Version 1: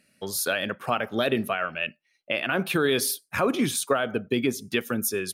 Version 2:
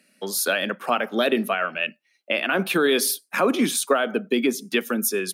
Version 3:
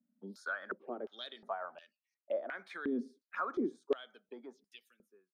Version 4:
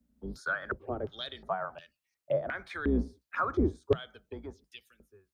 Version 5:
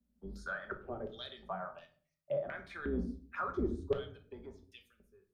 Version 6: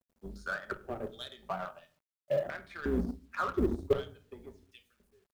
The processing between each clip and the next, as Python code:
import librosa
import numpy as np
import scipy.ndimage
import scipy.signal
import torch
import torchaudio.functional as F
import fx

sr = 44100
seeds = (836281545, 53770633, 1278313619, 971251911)

y1 = scipy.signal.sosfilt(scipy.signal.butter(8, 180.0, 'highpass', fs=sr, output='sos'), x)
y1 = y1 * 10.0 ** (3.5 / 20.0)
y2 = fx.fade_out_tail(y1, sr, length_s=1.51)
y2 = fx.env_phaser(y2, sr, low_hz=410.0, high_hz=2700.0, full_db=-22.5)
y2 = fx.filter_held_bandpass(y2, sr, hz=2.8, low_hz=240.0, high_hz=5000.0)
y2 = y2 * 10.0 ** (-4.5 / 20.0)
y3 = fx.octave_divider(y2, sr, octaves=2, level_db=-1.0)
y3 = y3 * 10.0 ** (6.0 / 20.0)
y4 = fx.room_shoebox(y3, sr, seeds[0], volume_m3=410.0, walls='furnished', distance_m=1.2)
y4 = y4 * 10.0 ** (-8.0 / 20.0)
y5 = fx.law_mismatch(y4, sr, coded='A')
y5 = y5 * 10.0 ** (6.5 / 20.0)